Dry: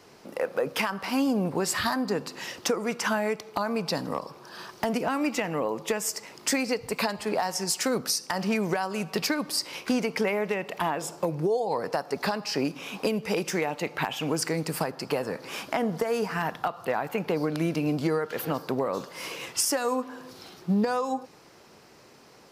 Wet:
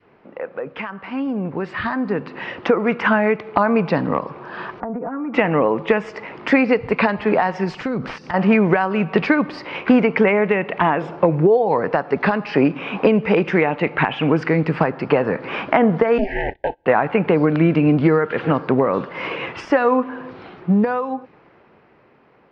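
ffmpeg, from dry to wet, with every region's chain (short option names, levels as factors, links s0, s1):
-filter_complex "[0:a]asettb=1/sr,asplit=3[s0][s1][s2];[s0]atrim=end=4.804[s3];[s1]atrim=start=4.8:end=5.34,asetpts=PTS-STARTPTS,afade=t=in:d=0.004:c=qsin,afade=t=out:st=0.536:d=0.004:c=qsin,lowpass=f=1400:w=0.5412,lowpass=f=1400:w=1.3066,aecho=1:1:4.2:0.96,atrim=end_sample=23814,acompressor=threshold=0.0141:ratio=6:attack=3.2:release=140:knee=1:detection=peak[s4];[s2]atrim=start=5.336[s5];[s3][s4]acrossfade=d=0.004:c1=hsin:c2=qsin[s6];[s6][s5]acrossfade=d=0.004:c1=qsin:c2=hsin,asettb=1/sr,asplit=3[s7][s8][s9];[s7]atrim=end=7.744[s10];[s8]atrim=start=7.74:end=8.34,asetpts=PTS-STARTPTS,afade=t=in:d=0.004:c=qsin,afade=t=out:st=0.596:d=0.004:c=qsin,acompressor=threshold=0.00891:ratio=2.5:attack=3.2:release=140:knee=1:detection=peak,bass=f=250:g=11,treble=f=4000:g=14,aeval=exprs='0.0531*(abs(mod(val(0)/0.0531+3,4)-2)-1)':c=same[s11];[s9]atrim=start=8.336[s12];[s10][s11]acrossfade=d=0.004:c1=hsin:c2=qsin[s13];[s13][s12]acrossfade=d=0.004:c1=qsin:c2=hsin,asettb=1/sr,asplit=3[s14][s15][s16];[s14]atrim=end=16.184[s17];[s15]atrim=start=16.18:end=16.86,asetpts=PTS-STARTPTS,afade=t=in:d=0.004:c=qsin,afade=t=out:st=0.676:d=0.004:c=qsin,aeval=exprs='val(0)*sin(2*PI*200*n/s)':c=same,agate=range=0.0562:threshold=0.00891:ratio=16:release=100:detection=peak,asuperstop=centerf=1200:order=12:qfactor=1.6[s18];[s16]atrim=start=16.856[s19];[s17][s18]acrossfade=d=0.004:c1=hsin:c2=qsin[s20];[s20][s19]acrossfade=d=0.004:c1=qsin:c2=hsin,lowpass=f=2500:w=0.5412,lowpass=f=2500:w=1.3066,adynamicequalizer=threshold=0.0112:dfrequency=720:dqfactor=0.95:tfrequency=720:tqfactor=0.95:attack=5:release=100:ratio=0.375:range=2.5:mode=cutabove:tftype=bell,dynaudnorm=f=210:g=21:m=5.01"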